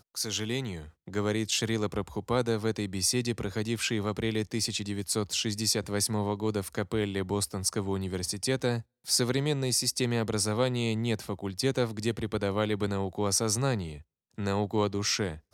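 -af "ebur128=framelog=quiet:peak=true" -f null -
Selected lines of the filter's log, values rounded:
Integrated loudness:
  I:         -29.6 LUFS
  Threshold: -39.7 LUFS
Loudness range:
  LRA:         1.7 LU
  Threshold: -49.5 LUFS
  LRA low:   -30.1 LUFS
  LRA high:  -28.4 LUFS
True peak:
  Peak:      -11.6 dBFS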